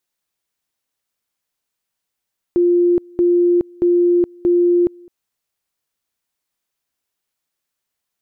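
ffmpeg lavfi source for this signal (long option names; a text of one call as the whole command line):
ffmpeg -f lavfi -i "aevalsrc='pow(10,(-10.5-28*gte(mod(t,0.63),0.42))/20)*sin(2*PI*350*t)':duration=2.52:sample_rate=44100" out.wav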